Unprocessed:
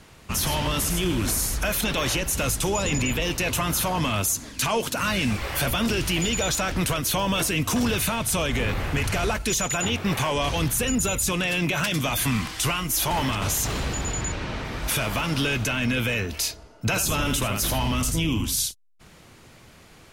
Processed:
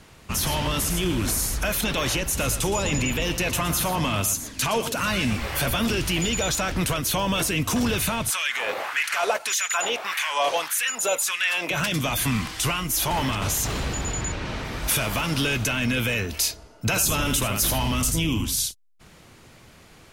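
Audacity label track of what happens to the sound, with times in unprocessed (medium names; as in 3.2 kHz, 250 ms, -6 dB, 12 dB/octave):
2.250000	5.950000	delay 117 ms -12 dB
8.300000	11.710000	LFO high-pass sine 1.7 Hz 530–1900 Hz
14.450000	18.440000	treble shelf 5.8 kHz +5 dB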